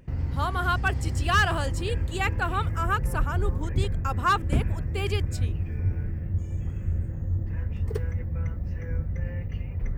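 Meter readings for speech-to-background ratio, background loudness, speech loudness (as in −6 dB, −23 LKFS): 1.0 dB, −30.0 LKFS, −29.0 LKFS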